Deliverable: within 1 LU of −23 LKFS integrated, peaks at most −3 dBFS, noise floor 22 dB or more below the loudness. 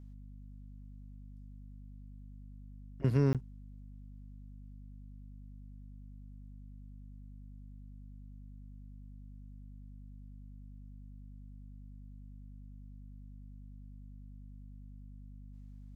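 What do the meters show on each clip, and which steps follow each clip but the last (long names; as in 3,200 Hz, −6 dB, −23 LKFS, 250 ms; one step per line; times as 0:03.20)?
number of dropouts 1; longest dropout 17 ms; mains hum 50 Hz; hum harmonics up to 250 Hz; level of the hum −47 dBFS; integrated loudness −44.5 LKFS; sample peak −17.5 dBFS; target loudness −23.0 LKFS
→ repair the gap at 0:03.33, 17 ms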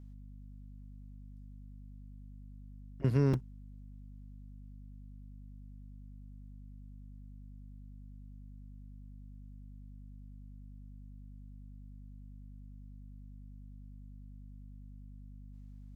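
number of dropouts 0; mains hum 50 Hz; hum harmonics up to 250 Hz; level of the hum −47 dBFS
→ hum removal 50 Hz, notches 5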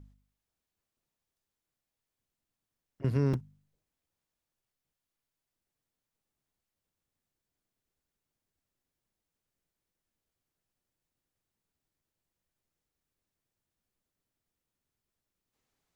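mains hum none found; integrated loudness −31.5 LKFS; sample peak −17.5 dBFS; target loudness −23.0 LKFS
→ level +8.5 dB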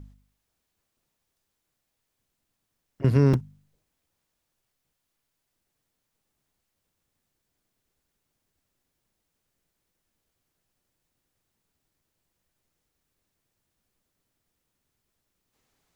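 integrated loudness −23.0 LKFS; sample peak −9.0 dBFS; background noise floor −80 dBFS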